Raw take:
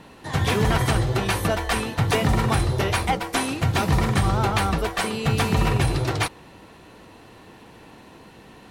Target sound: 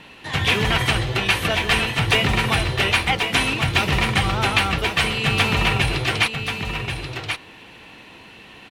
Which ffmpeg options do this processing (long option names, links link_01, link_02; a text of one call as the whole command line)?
ffmpeg -i in.wav -af "equalizer=frequency=2700:width_type=o:width=1.3:gain=13.5,aecho=1:1:1083:0.447,volume=-2dB" out.wav